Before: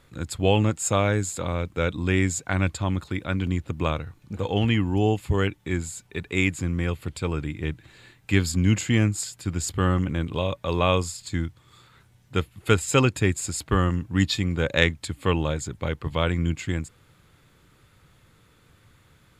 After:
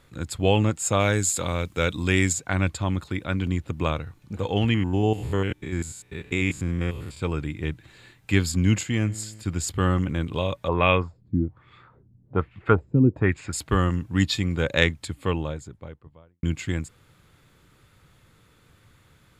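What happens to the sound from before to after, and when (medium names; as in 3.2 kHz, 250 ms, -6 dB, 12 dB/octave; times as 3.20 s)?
1.00–2.33 s: treble shelf 2.9 kHz +9.5 dB
4.74–7.21 s: spectrogram pixelated in time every 100 ms
8.83–9.43 s: feedback comb 54 Hz, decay 2 s, mix 40%
10.68–13.53 s: LFO low-pass sine 1.2 Hz 220–2500 Hz
14.79–16.43 s: studio fade out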